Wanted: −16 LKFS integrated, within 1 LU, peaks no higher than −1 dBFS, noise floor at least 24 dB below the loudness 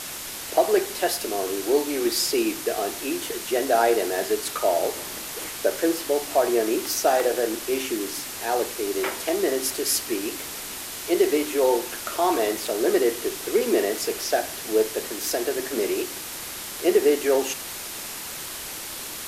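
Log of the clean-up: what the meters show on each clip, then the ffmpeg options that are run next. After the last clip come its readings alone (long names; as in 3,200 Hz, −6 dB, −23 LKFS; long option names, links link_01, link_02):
background noise floor −35 dBFS; target noise floor −49 dBFS; integrated loudness −24.5 LKFS; sample peak −7.0 dBFS; target loudness −16.0 LKFS
→ -af "afftdn=noise_reduction=14:noise_floor=-35"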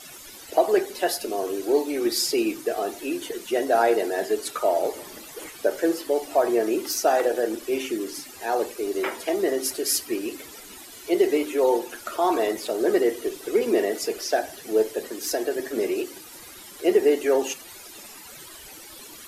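background noise floor −44 dBFS; target noise floor −49 dBFS
→ -af "afftdn=noise_reduction=6:noise_floor=-44"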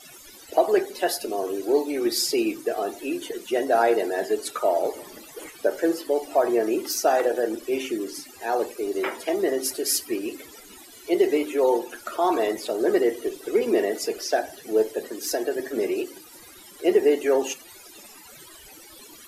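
background noise floor −47 dBFS; target noise floor −49 dBFS
→ -af "afftdn=noise_reduction=6:noise_floor=-47"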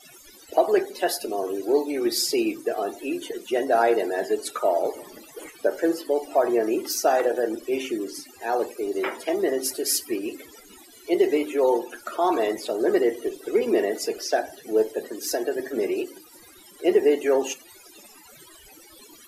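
background noise floor −50 dBFS; integrated loudness −24.5 LKFS; sample peak −7.5 dBFS; target loudness −16.0 LKFS
→ -af "volume=8.5dB,alimiter=limit=-1dB:level=0:latency=1"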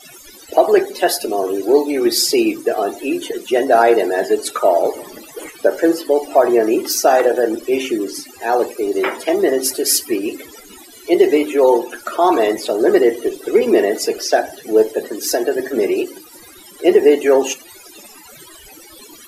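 integrated loudness −16.5 LKFS; sample peak −1.0 dBFS; background noise floor −41 dBFS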